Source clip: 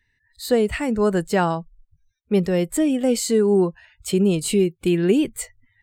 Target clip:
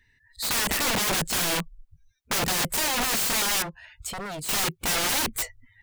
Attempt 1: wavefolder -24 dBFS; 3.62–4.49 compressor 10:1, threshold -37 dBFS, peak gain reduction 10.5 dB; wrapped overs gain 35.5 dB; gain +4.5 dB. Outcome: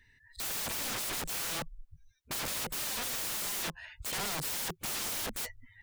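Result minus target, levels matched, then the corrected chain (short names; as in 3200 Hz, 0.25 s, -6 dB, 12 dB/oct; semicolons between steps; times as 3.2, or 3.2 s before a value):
wrapped overs: distortion +13 dB
wavefolder -24 dBFS; 3.62–4.49 compressor 10:1, threshold -37 dBFS, peak gain reduction 10.5 dB; wrapped overs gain 25.5 dB; gain +4.5 dB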